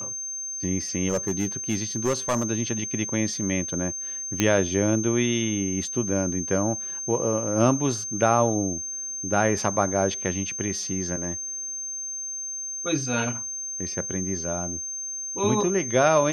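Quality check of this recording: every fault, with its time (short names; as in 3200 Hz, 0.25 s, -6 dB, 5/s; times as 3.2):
tone 6300 Hz -30 dBFS
1.09–2.45 clipped -18.5 dBFS
4.4 pop -6 dBFS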